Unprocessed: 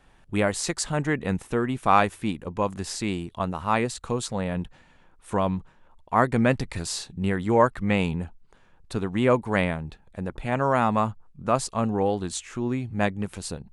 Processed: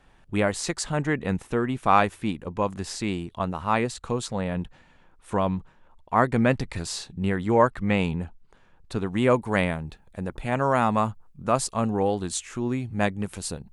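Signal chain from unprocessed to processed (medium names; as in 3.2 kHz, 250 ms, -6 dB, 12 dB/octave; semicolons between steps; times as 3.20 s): treble shelf 9.1 kHz -6 dB, from 9.06 s +7.5 dB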